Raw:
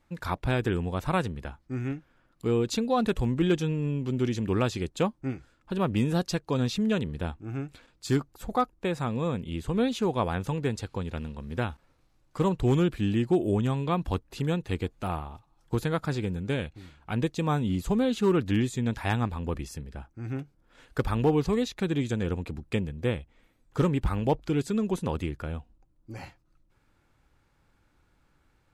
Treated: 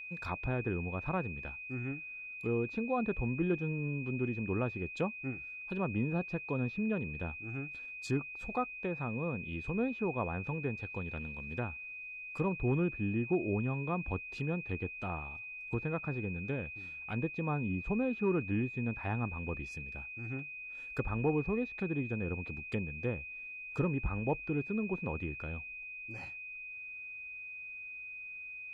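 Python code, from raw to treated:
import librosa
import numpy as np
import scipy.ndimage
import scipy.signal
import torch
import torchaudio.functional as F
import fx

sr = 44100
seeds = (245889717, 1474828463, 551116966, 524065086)

y = fx.env_lowpass_down(x, sr, base_hz=1400.0, full_db=-25.0)
y = y + 10.0 ** (-35.0 / 20.0) * np.sin(2.0 * np.pi * 2500.0 * np.arange(len(y)) / sr)
y = F.gain(torch.from_numpy(y), -7.5).numpy()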